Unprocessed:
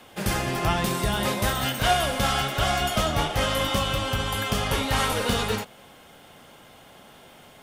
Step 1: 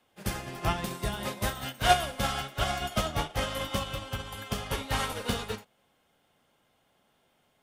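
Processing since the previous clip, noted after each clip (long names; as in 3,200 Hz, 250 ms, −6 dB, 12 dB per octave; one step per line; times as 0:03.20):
expander for the loud parts 2.5 to 1, over −32 dBFS
level +1.5 dB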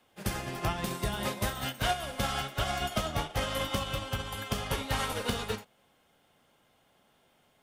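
downward compressor 6 to 1, threshold −29 dBFS, peak gain reduction 12.5 dB
level +2.5 dB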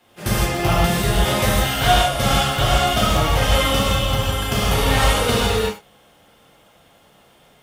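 reverb whose tail is shaped and stops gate 190 ms flat, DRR −7 dB
level +6.5 dB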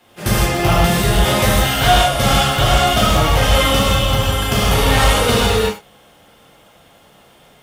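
soft clipping −7.5 dBFS, distortion −22 dB
level +4.5 dB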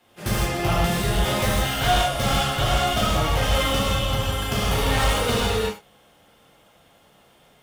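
stylus tracing distortion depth 0.026 ms
level −7.5 dB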